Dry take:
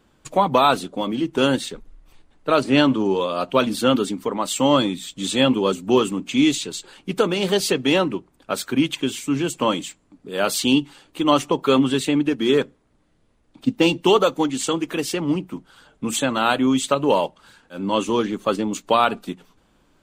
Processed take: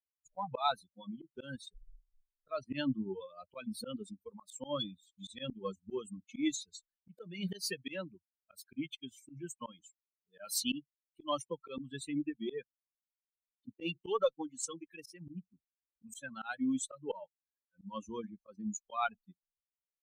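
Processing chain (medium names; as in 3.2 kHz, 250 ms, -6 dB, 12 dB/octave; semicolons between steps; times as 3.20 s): expander on every frequency bin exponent 3; treble shelf 2.9 kHz +2.5 dB; slow attack 199 ms; Chebyshev shaper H 4 -42 dB, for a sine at -12.5 dBFS; trim -5.5 dB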